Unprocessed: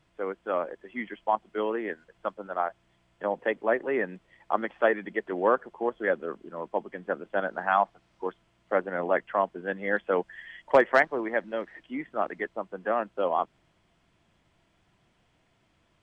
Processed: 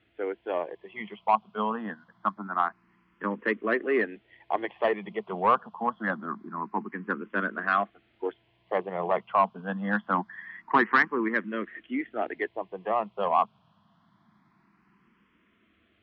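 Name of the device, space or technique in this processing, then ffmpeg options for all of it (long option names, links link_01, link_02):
barber-pole phaser into a guitar amplifier: -filter_complex "[0:a]asplit=2[link_01][link_02];[link_02]afreqshift=0.25[link_03];[link_01][link_03]amix=inputs=2:normalize=1,asoftclip=type=tanh:threshold=-17.5dB,highpass=87,equalizer=frequency=210:width_type=q:width=4:gain=8,equalizer=frequency=550:width_type=q:width=4:gain=-8,equalizer=frequency=1100:width_type=q:width=4:gain=7,lowpass=frequency=4000:width=0.5412,lowpass=frequency=4000:width=1.3066,volume=4.5dB"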